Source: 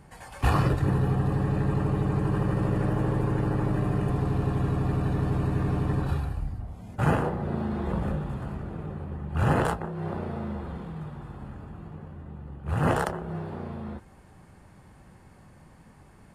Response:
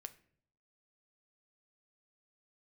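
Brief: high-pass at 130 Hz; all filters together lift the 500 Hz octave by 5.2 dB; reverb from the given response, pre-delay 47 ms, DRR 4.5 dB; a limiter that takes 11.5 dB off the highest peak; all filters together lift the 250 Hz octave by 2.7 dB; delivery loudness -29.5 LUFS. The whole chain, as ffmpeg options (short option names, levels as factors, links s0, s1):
-filter_complex "[0:a]highpass=130,equalizer=f=250:t=o:g=3.5,equalizer=f=500:t=o:g=5.5,alimiter=limit=0.1:level=0:latency=1,asplit=2[s0][s1];[1:a]atrim=start_sample=2205,adelay=47[s2];[s1][s2]afir=irnorm=-1:irlink=0,volume=1.12[s3];[s0][s3]amix=inputs=2:normalize=0,volume=0.944"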